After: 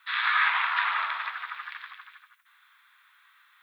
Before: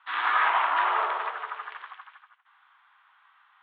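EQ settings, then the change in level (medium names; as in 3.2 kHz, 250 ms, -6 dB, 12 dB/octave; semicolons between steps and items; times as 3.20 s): high-pass 1.4 kHz 12 dB/octave; tilt EQ +6 dB/octave; peaking EQ 3 kHz -9.5 dB 0.28 oct; 0.0 dB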